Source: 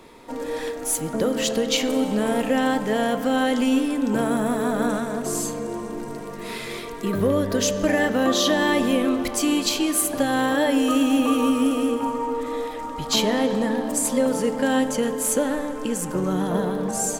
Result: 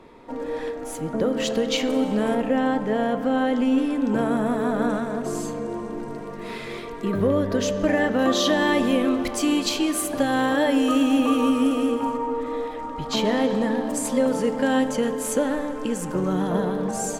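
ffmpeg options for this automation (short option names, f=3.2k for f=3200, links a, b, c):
-af "asetnsamples=n=441:p=0,asendcmd='1.4 lowpass f 3500;2.35 lowpass f 1400;3.78 lowpass f 2500;8.19 lowpass f 5300;12.17 lowpass f 2200;13.25 lowpass f 4600',lowpass=f=1.7k:p=1"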